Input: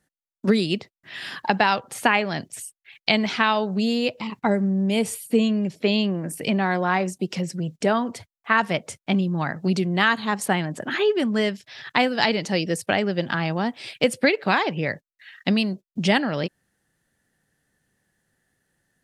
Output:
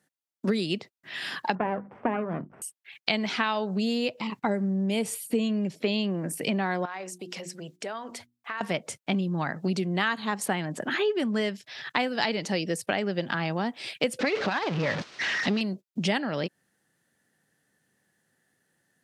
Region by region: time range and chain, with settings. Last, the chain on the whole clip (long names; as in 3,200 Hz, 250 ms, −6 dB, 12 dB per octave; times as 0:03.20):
0:01.55–0:02.62: lower of the sound and its delayed copy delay 0.36 ms + Chebyshev low-pass filter 1,400 Hz, order 3 + mains-hum notches 50/100/150/200/250/300/350 Hz
0:06.85–0:08.61: parametric band 170 Hz −12 dB 2.1 octaves + mains-hum notches 60/120/180/240/300/360 Hz + downward compressor 3 to 1, threshold −34 dBFS
0:14.19–0:15.61: converter with a step at zero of −21 dBFS + low-pass filter 5,200 Hz 24 dB per octave + saturating transformer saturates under 530 Hz
whole clip: high-pass filter 140 Hz; downward compressor 2 to 1, threshold −27 dBFS